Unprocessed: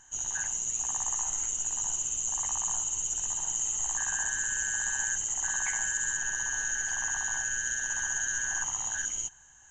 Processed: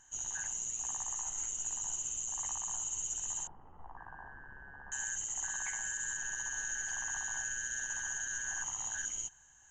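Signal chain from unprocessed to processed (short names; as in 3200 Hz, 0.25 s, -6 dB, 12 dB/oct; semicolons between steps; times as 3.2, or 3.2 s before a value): 3.47–4.92 LPF 1200 Hz 24 dB/oct; limiter -22.5 dBFS, peak gain reduction 4.5 dB; gain -5.5 dB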